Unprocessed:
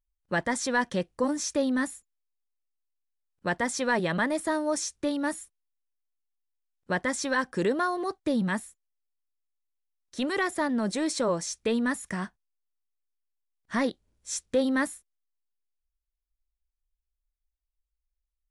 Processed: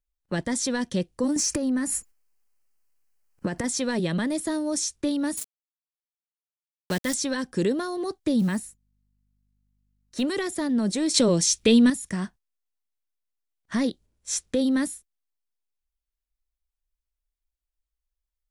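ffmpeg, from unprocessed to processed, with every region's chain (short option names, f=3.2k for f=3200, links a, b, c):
-filter_complex "[0:a]asettb=1/sr,asplit=3[a][b][c];[a]atrim=end=1.364[d];[b]atrim=start=1.36:end=3.64,asetpts=PTS-STARTPTS,afade=t=in:d=0.004:c=qsin,afade=t=out:st=2.276:d=0.004:c=qsin,equalizer=f=3.6k:w=5:g=-13.5,acompressor=threshold=-40dB:ratio=16:attack=3.2:release=140:knee=1:detection=peak,aeval=exprs='0.0944*sin(PI/2*3.55*val(0)/0.0944)':c=same[e];[c]atrim=start=3.636[f];[d][e]acrossfade=d=0.004:c1=hsin:c2=qsin[g];[g][f]acrossfade=d=0.004:c1=qsin:c2=hsin,asettb=1/sr,asplit=3[h][i][j];[h]atrim=end=5.374[k];[i]atrim=start=5.37:end=7.14,asetpts=PTS-STARTPTS,afade=t=in:d=0.004:c=qsin,afade=t=out:st=1.766:d=0.004:c=qsin,highshelf=f=2.1k:g=7.5,aeval=exprs='val(0)*gte(abs(val(0)),0.0224)':c=same[l];[j]atrim=start=7.136[m];[k][l]acrossfade=d=0.004:c1=hsin:c2=qsin[n];[n][m]acrossfade=d=0.004:c1=qsin:c2=hsin,asettb=1/sr,asplit=3[o][p][q];[o]atrim=end=8.394[r];[p]atrim=start=8.39:end=10.22,asetpts=PTS-STARTPTS,afade=t=in:d=0.004:c=qsin,afade=t=out:st=1.826:d=0.004:c=qsin,bandreject=f=3.4k:w=7.9,aeval=exprs='val(0)+0.000355*(sin(2*PI*50*n/s)+sin(2*PI*2*50*n/s)/2+sin(2*PI*3*50*n/s)/3+sin(2*PI*4*50*n/s)/4+sin(2*PI*5*50*n/s)/5)':c=same,acrusher=bits=8:mode=log:mix=0:aa=0.000001[s];[q]atrim=start=10.216[t];[r][s]acrossfade=d=0.004:c1=hsin:c2=qsin[u];[u][t]acrossfade=d=0.004:c1=qsin:c2=hsin,asettb=1/sr,asplit=3[v][w][x];[v]atrim=end=11.144[y];[w]atrim=start=11.14:end=11.9,asetpts=PTS-STARTPTS,afade=t=in:d=0.004:c=qsin,afade=t=out:st=0.756:d=0.004:c=qsin,equalizer=f=3k:w=1.3:g=5.5,acontrast=74[z];[x]atrim=start=11.896[aa];[y][z]acrossfade=d=0.004:c1=hsin:c2=qsin[ab];[ab][aa]acrossfade=d=0.004:c1=qsin:c2=hsin,agate=range=-6dB:threshold=-49dB:ratio=16:detection=peak,acrossover=split=430|3000[ac][ad][ae];[ad]acompressor=threshold=-45dB:ratio=3[af];[ac][af][ae]amix=inputs=3:normalize=0,volume=5dB"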